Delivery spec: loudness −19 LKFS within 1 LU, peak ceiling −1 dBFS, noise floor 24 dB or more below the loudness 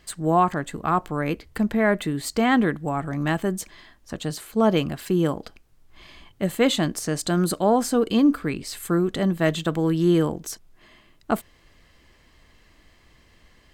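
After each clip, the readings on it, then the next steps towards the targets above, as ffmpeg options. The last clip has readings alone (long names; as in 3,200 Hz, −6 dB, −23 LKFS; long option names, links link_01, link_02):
integrated loudness −23.5 LKFS; sample peak −7.0 dBFS; target loudness −19.0 LKFS
→ -af "volume=4.5dB"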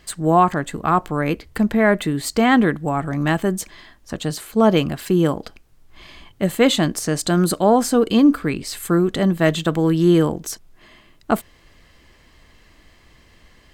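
integrated loudness −19.0 LKFS; sample peak −2.5 dBFS; background noise floor −53 dBFS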